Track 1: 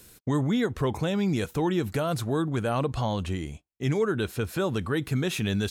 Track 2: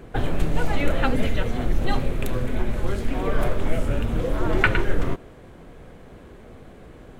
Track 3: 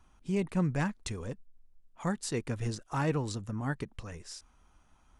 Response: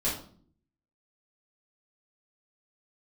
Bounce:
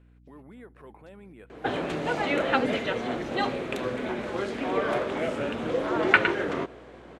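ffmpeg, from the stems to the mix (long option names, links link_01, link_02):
-filter_complex "[0:a]lowpass=frequency=2600:width=0.5412,lowpass=frequency=2600:width=1.3066,volume=-10dB[link_01];[1:a]adelay=1500,volume=1.5dB[link_02];[2:a]alimiter=level_in=4dB:limit=-24dB:level=0:latency=1,volume=-4dB,volume=-17dB[link_03];[link_01][link_03]amix=inputs=2:normalize=0,acrusher=samples=4:mix=1:aa=0.000001,alimiter=level_in=12.5dB:limit=-24dB:level=0:latency=1:release=214,volume=-12.5dB,volume=0dB[link_04];[link_02][link_04]amix=inputs=2:normalize=0,highpass=280,lowpass=5600,aeval=exprs='val(0)+0.00178*(sin(2*PI*60*n/s)+sin(2*PI*2*60*n/s)/2+sin(2*PI*3*60*n/s)/3+sin(2*PI*4*60*n/s)/4+sin(2*PI*5*60*n/s)/5)':channel_layout=same"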